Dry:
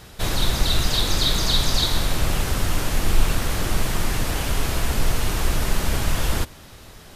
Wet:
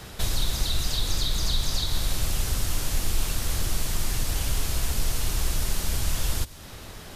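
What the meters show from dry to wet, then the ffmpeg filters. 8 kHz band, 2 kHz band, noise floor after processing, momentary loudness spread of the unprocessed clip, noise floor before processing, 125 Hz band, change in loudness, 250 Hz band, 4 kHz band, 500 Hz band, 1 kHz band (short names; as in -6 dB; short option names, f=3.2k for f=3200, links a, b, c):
-1.5 dB, -8.5 dB, -42 dBFS, 5 LU, -44 dBFS, -5.0 dB, -5.0 dB, -9.0 dB, -6.0 dB, -9.5 dB, -9.5 dB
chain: -filter_complex "[0:a]acrossover=split=110|3600[a][b][c];[a]acompressor=threshold=-24dB:ratio=4[d];[b]acompressor=threshold=-41dB:ratio=4[e];[c]acompressor=threshold=-34dB:ratio=4[f];[d][e][f]amix=inputs=3:normalize=0,volume=2.5dB"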